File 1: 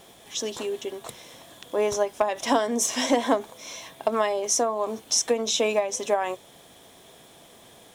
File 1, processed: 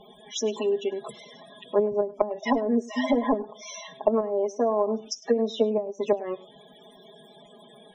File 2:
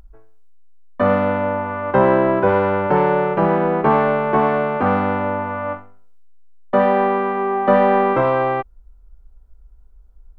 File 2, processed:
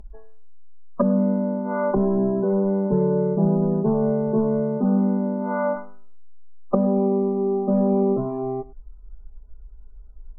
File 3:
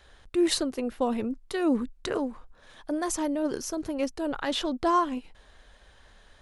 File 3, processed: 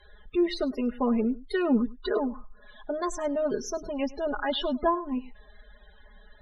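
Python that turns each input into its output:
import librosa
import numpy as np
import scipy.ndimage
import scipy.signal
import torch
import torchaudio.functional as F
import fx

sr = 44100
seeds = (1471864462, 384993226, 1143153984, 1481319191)

p1 = np.clip(x, -10.0 ** (-12.5 / 20.0), 10.0 ** (-12.5 / 20.0))
p2 = p1 + 0.9 * np.pad(p1, (int(4.8 * sr / 1000.0), 0))[:len(p1)]
p3 = fx.spec_topn(p2, sr, count=32)
p4 = fx.env_lowpass_down(p3, sr, base_hz=310.0, full_db=-15.0)
y = p4 + fx.echo_single(p4, sr, ms=102, db=-20.0, dry=0)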